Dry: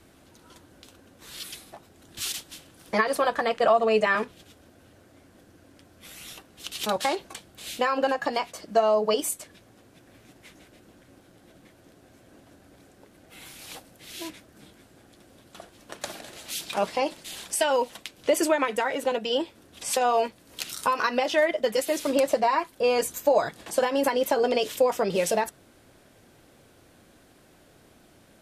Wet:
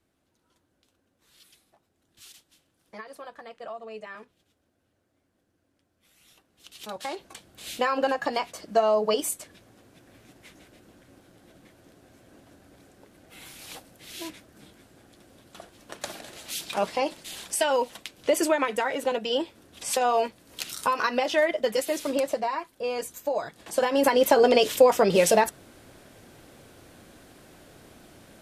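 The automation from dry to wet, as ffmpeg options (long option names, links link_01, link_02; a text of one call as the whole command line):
ffmpeg -i in.wav -af "volume=11.5dB,afade=type=in:start_time=6.13:duration=0.83:silence=0.398107,afade=type=in:start_time=6.96:duration=0.79:silence=0.316228,afade=type=out:start_time=21.73:duration=0.88:silence=0.473151,afade=type=in:start_time=23.53:duration=0.74:silence=0.251189" out.wav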